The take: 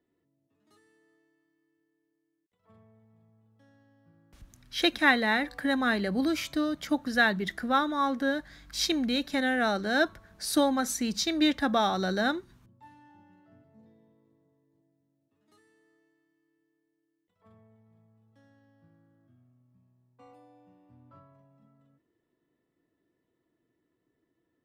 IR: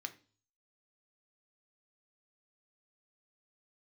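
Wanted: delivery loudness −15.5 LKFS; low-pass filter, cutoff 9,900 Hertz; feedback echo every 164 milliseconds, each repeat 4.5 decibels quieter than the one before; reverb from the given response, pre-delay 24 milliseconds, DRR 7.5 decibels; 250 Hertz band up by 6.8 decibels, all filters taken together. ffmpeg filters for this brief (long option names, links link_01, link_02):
-filter_complex "[0:a]lowpass=9900,equalizer=frequency=250:width_type=o:gain=8,aecho=1:1:164|328|492|656|820|984|1148|1312|1476:0.596|0.357|0.214|0.129|0.0772|0.0463|0.0278|0.0167|0.01,asplit=2[link_01][link_02];[1:a]atrim=start_sample=2205,adelay=24[link_03];[link_02][link_03]afir=irnorm=-1:irlink=0,volume=-6dB[link_04];[link_01][link_04]amix=inputs=2:normalize=0,volume=6dB"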